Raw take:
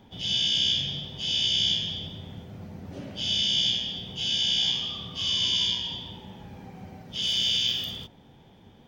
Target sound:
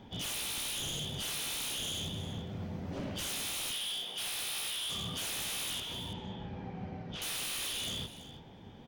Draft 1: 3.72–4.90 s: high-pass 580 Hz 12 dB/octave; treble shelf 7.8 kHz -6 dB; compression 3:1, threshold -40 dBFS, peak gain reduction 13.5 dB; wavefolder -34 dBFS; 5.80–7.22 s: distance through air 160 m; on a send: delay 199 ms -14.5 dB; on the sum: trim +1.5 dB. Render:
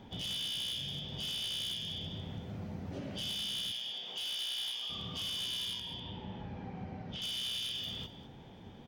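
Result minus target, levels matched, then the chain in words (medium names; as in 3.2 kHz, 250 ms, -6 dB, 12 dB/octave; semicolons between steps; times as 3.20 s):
echo 132 ms early; compression: peak gain reduction +7.5 dB
3.72–4.90 s: high-pass 580 Hz 12 dB/octave; treble shelf 7.8 kHz -6 dB; compression 3:1, threshold -28.5 dBFS, peak gain reduction 5.5 dB; wavefolder -34 dBFS; 5.80–7.22 s: distance through air 160 m; on a send: delay 331 ms -14.5 dB; on the sum: trim +1.5 dB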